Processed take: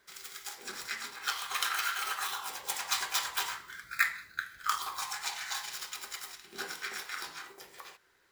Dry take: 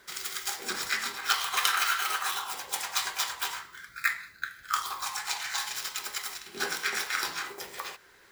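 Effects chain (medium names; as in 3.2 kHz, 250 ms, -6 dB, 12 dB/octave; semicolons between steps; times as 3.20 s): Doppler pass-by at 3.79 s, 6 m/s, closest 7.5 m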